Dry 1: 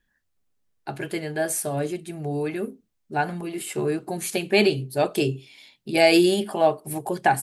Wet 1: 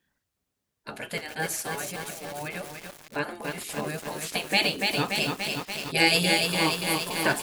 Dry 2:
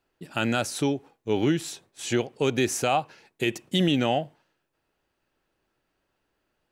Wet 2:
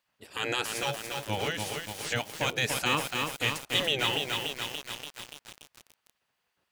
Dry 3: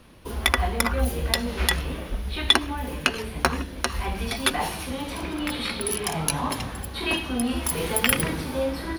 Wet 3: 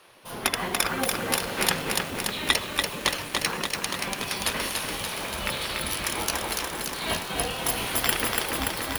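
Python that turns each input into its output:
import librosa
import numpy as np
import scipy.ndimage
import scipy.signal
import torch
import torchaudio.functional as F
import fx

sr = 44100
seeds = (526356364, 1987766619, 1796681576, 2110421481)

y = fx.spec_gate(x, sr, threshold_db=-10, keep='weak')
y = fx.echo_crushed(y, sr, ms=288, feedback_pct=80, bits=7, wet_db=-3)
y = F.gain(torch.from_numpy(y), 2.0).numpy()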